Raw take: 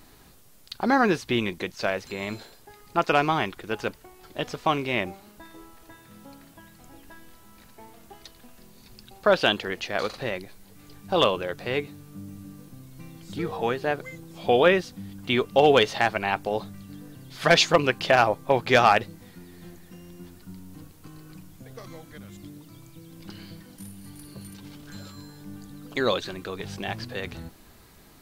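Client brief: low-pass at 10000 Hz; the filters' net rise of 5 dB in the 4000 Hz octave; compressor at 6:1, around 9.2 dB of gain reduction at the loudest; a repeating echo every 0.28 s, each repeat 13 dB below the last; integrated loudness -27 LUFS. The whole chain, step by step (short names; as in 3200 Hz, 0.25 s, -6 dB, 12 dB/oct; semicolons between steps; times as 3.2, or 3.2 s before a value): LPF 10000 Hz; bell 4000 Hz +6.5 dB; compressor 6:1, threshold -22 dBFS; feedback echo 0.28 s, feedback 22%, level -13 dB; gain +2.5 dB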